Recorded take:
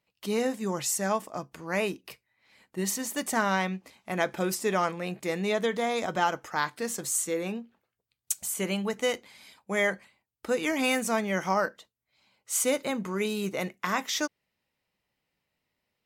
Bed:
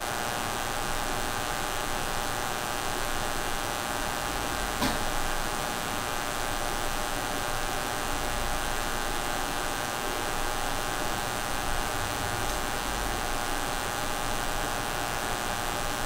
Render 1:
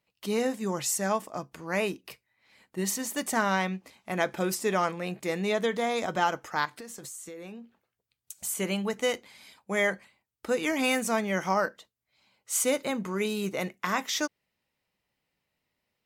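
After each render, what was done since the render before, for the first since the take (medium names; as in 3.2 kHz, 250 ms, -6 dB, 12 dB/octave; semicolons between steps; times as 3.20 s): 6.65–8.44 s: compression 16:1, threshold -38 dBFS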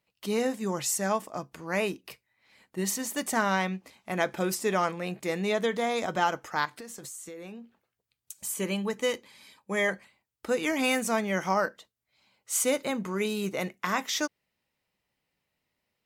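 8.37–9.89 s: comb of notches 710 Hz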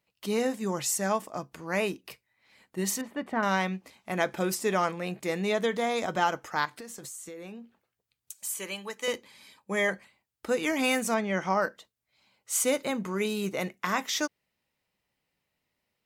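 3.01–3.43 s: distance through air 490 m; 8.35–9.08 s: high-pass 1 kHz 6 dB/octave; 11.14–11.62 s: distance through air 83 m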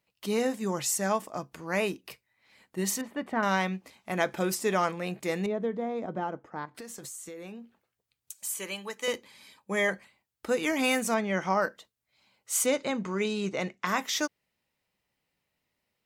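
5.46–6.75 s: band-pass filter 240 Hz, Q 0.68; 12.66–13.87 s: low-pass 7.4 kHz 24 dB/octave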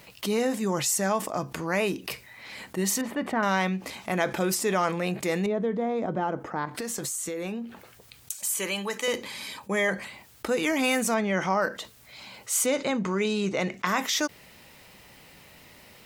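level flattener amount 50%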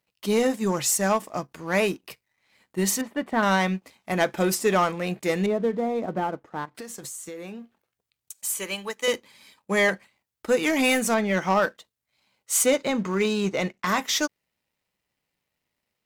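waveshaping leveller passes 2; upward expansion 2.5:1, over -36 dBFS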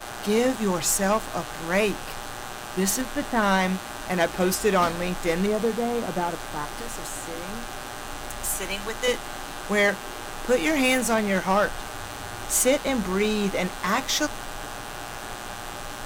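add bed -5 dB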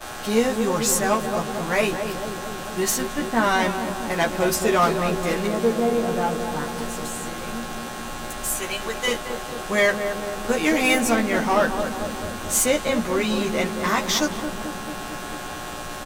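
doubling 13 ms -2.5 dB; filtered feedback delay 222 ms, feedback 78%, low-pass 850 Hz, level -5.5 dB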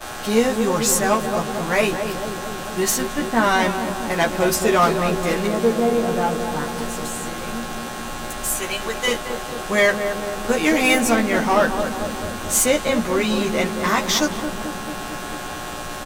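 trim +2.5 dB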